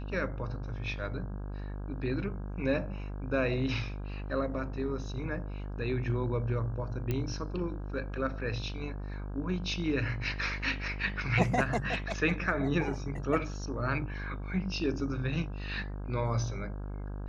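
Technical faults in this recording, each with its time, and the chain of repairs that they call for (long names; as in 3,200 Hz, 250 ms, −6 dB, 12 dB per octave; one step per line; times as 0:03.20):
mains buzz 50 Hz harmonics 33 −38 dBFS
0:07.11: click −19 dBFS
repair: click removal
hum removal 50 Hz, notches 33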